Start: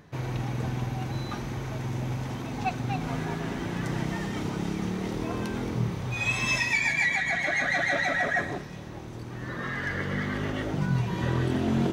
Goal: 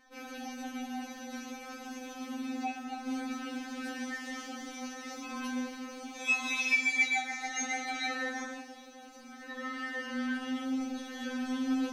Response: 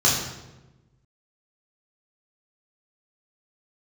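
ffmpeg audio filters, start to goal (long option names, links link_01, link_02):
-filter_complex "[0:a]asettb=1/sr,asplit=3[link_01][link_02][link_03];[link_01]atrim=end=2.484[link_04];[link_02]atrim=start=2.48:end=3.07,asetpts=PTS-STARTPTS,afade=type=in:duration=0.004:curve=qsin,afade=type=out:start_time=0.586:duration=0.004:curve=qsin,acompressor=threshold=-31dB:ratio=2.5[link_05];[link_03]atrim=start=3.066[link_06];[link_04][link_05]acrossfade=duration=0.004:curve1=hsin:curve2=qsin[link_07];[link_07][link_06]acrossfade=duration=0.004:curve1=qsin:curve2=hsin,bandreject=frequency=65:width_type=h:width=4,bandreject=frequency=130:width_type=h:width=4,bandreject=frequency=195:width_type=h:width=4,bandreject=frequency=260:width_type=h:width=4,bandreject=frequency=325:width_type=h:width=4,bandreject=frequency=390:width_type=h:width=4,bandreject=frequency=455:width_type=h:width=4,bandreject=frequency=520:width_type=h:width=4,bandreject=frequency=585:width_type=h:width=4,bandreject=frequency=650:width_type=h:width=4,bandreject=frequency=715:width_type=h:width=4,bandreject=frequency=780:width_type=h:width=4,bandreject=frequency=845:width_type=h:width=4,bandreject=frequency=910:width_type=h:width=4,bandreject=frequency=975:width_type=h:width=4,bandreject=frequency=1040:width_type=h:width=4,bandreject=frequency=1105:width_type=h:width=4,bandreject=frequency=1170:width_type=h:width=4,bandreject=frequency=1235:width_type=h:width=4,bandreject=frequency=1300:width_type=h:width=4,bandreject=frequency=1365:width_type=h:width=4,bandreject=frequency=1430:width_type=h:width=4,bandreject=frequency=1495:width_type=h:width=4,bandreject=frequency=1560:width_type=h:width=4,bandreject=frequency=1625:width_type=h:width=4,bandreject=frequency=1690:width_type=h:width=4,bandreject=frequency=1755:width_type=h:width=4,bandreject=frequency=1820:width_type=h:width=4,bandreject=frequency=1885:width_type=h:width=4,bandreject=frequency=1950:width_type=h:width=4,bandreject=frequency=2015:width_type=h:width=4,asplit=2[link_08][link_09];[1:a]atrim=start_sample=2205,highshelf=frequency=4900:gain=6.5[link_10];[link_09][link_10]afir=irnorm=-1:irlink=0,volume=-22.5dB[link_11];[link_08][link_11]amix=inputs=2:normalize=0,afftfilt=real='re*3.46*eq(mod(b,12),0)':imag='im*3.46*eq(mod(b,12),0)':win_size=2048:overlap=0.75,volume=-3dB"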